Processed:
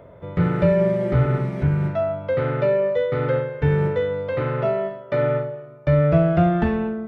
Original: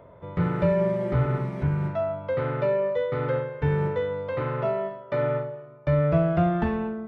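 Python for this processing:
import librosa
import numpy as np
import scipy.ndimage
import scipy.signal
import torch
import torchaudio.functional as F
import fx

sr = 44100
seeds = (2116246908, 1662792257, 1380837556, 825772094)

y = fx.peak_eq(x, sr, hz=1000.0, db=-6.5, octaves=0.4)
y = y * 10.0 ** (5.0 / 20.0)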